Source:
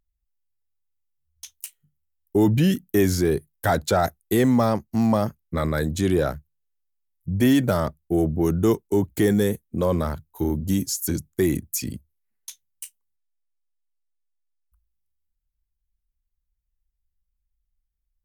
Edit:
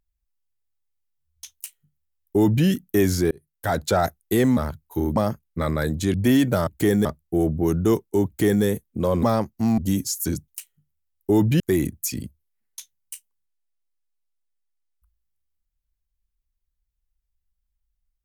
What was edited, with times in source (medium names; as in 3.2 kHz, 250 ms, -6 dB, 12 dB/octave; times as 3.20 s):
1.54–2.66 s: copy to 11.30 s
3.31–3.85 s: fade in
4.57–5.12 s: swap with 10.01–10.60 s
6.10–7.30 s: delete
9.04–9.42 s: copy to 7.83 s